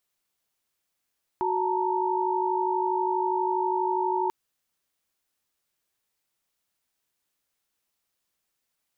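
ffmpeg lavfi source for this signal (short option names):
-f lavfi -i "aevalsrc='0.0422*(sin(2*PI*369.99*t)+sin(2*PI*880*t)+sin(2*PI*932.33*t))':d=2.89:s=44100"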